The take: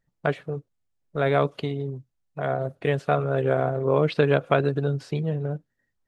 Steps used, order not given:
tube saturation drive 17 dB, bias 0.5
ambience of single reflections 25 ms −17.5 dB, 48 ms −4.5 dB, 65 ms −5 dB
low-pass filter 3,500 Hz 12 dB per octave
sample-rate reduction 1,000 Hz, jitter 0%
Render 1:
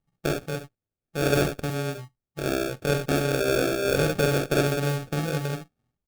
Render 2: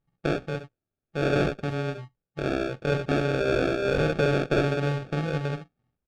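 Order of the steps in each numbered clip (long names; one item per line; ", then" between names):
low-pass filter, then sample-rate reduction, then tube saturation, then ambience of single reflections
sample-rate reduction, then ambience of single reflections, then tube saturation, then low-pass filter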